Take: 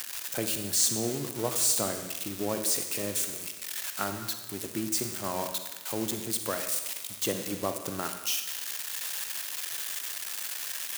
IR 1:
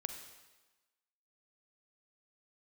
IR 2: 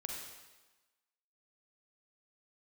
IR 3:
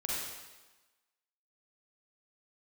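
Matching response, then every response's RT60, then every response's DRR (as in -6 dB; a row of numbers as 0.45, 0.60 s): 1; 1.2, 1.2, 1.2 s; 6.0, -0.5, -6.0 dB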